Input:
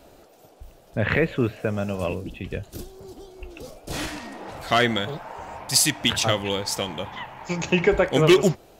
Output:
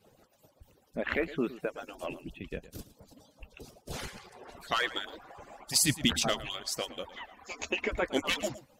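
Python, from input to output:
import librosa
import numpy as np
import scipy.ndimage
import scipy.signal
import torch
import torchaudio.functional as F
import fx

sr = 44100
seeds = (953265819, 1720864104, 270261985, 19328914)

y = fx.hpss_only(x, sr, part='percussive')
y = fx.bass_treble(y, sr, bass_db=12, treble_db=2, at=(5.81, 6.5))
y = y + 10.0 ** (-16.0 / 20.0) * np.pad(y, (int(112 * sr / 1000.0), 0))[:len(y)]
y = y * librosa.db_to_amplitude(-7.0)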